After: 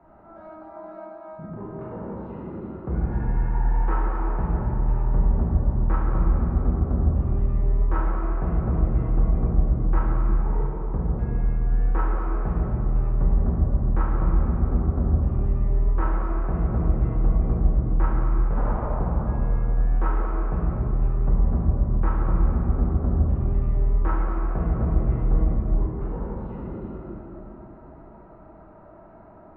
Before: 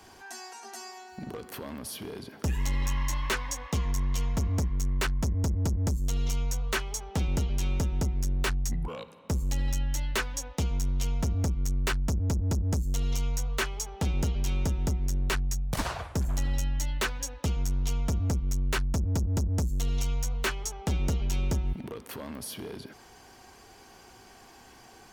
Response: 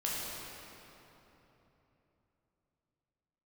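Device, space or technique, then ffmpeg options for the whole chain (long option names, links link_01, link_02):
slowed and reverbed: -filter_complex "[0:a]asetrate=37485,aresample=44100[link_01];[1:a]atrim=start_sample=2205[link_02];[link_01][link_02]afir=irnorm=-1:irlink=0,lowpass=frequency=1300:width=0.5412,lowpass=frequency=1300:width=1.3066"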